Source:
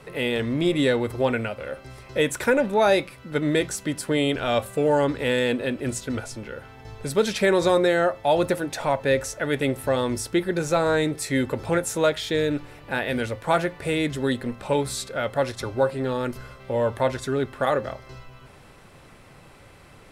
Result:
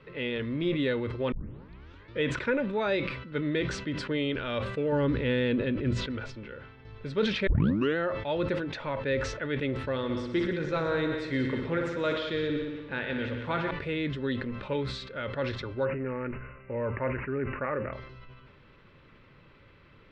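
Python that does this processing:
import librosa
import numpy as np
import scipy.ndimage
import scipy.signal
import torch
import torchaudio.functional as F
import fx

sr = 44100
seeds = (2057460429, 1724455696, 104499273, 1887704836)

y = fx.low_shelf(x, sr, hz=270.0, db=9.5, at=(4.92, 5.98))
y = fx.echo_heads(y, sr, ms=61, heads='all three', feedback_pct=45, wet_db=-11, at=(9.91, 13.71))
y = fx.resample_bad(y, sr, factor=8, down='none', up='filtered', at=(15.85, 17.93))
y = fx.edit(y, sr, fx.tape_start(start_s=1.32, length_s=0.9),
    fx.tape_start(start_s=7.47, length_s=0.5), tone=tone)
y = scipy.signal.sosfilt(scipy.signal.butter(4, 3800.0, 'lowpass', fs=sr, output='sos'), y)
y = fx.peak_eq(y, sr, hz=740.0, db=-14.5, octaves=0.35)
y = fx.sustainer(y, sr, db_per_s=56.0)
y = y * librosa.db_to_amplitude(-6.5)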